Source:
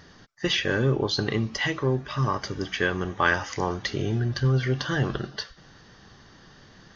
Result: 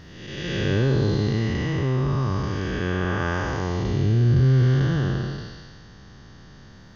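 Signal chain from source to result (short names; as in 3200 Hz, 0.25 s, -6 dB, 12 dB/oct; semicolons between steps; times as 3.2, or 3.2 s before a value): time blur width 0.45 s; low shelf 230 Hz +10 dB; gain +2 dB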